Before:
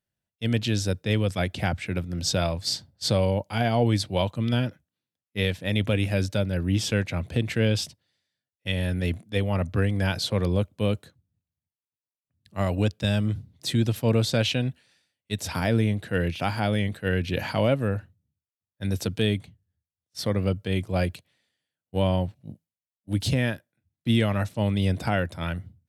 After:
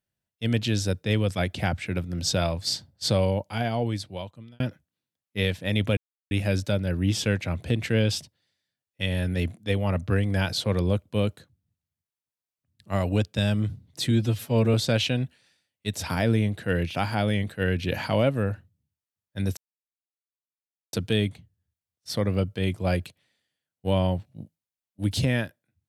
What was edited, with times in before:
3.22–4.60 s: fade out
5.97 s: insert silence 0.34 s
13.77–14.19 s: stretch 1.5×
19.02 s: insert silence 1.36 s

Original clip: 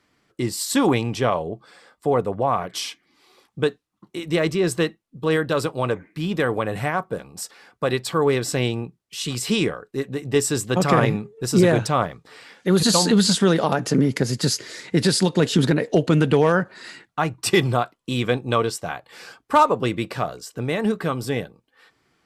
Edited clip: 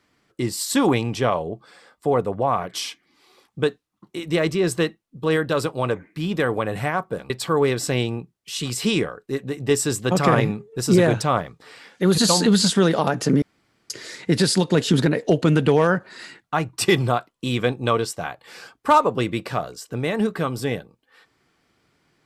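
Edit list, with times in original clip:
7.30–7.95 s: delete
14.07–14.55 s: room tone

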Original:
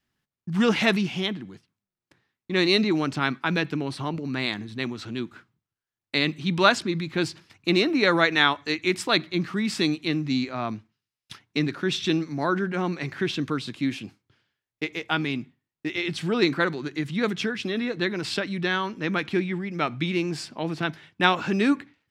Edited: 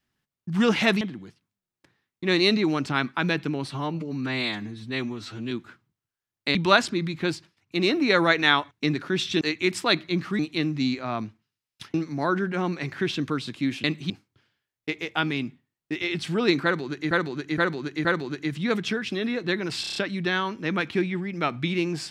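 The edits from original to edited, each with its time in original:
1.01–1.28 s: delete
3.98–5.18 s: stretch 1.5×
6.22–6.48 s: move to 14.04 s
7.16–7.85 s: dip -18 dB, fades 0.34 s linear
9.62–9.89 s: delete
11.44–12.14 s: move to 8.64 s
16.58–17.05 s: loop, 4 plays
18.34 s: stutter 0.03 s, 6 plays

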